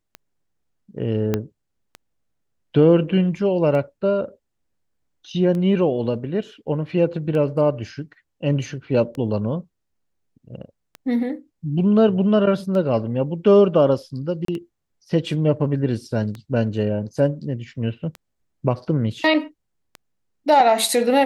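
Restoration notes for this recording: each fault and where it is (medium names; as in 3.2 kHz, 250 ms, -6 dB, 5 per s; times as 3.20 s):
tick 33 1/3 rpm -19 dBFS
1.34 s: pop -8 dBFS
14.45–14.48 s: dropout 33 ms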